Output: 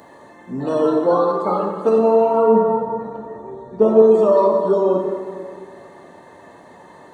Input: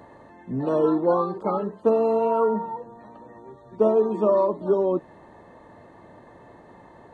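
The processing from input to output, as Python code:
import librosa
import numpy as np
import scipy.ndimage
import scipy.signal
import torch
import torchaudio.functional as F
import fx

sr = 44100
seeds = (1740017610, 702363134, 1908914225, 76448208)

y = fx.tilt_eq(x, sr, slope=-3.0, at=(1.98, 4.02))
y = fx.highpass(y, sr, hz=170.0, slope=6)
y = fx.high_shelf(y, sr, hz=3400.0, db=12.0)
y = fx.rev_plate(y, sr, seeds[0], rt60_s=2.2, hf_ratio=0.6, predelay_ms=0, drr_db=0.5)
y = F.gain(torch.from_numpy(y), 2.0).numpy()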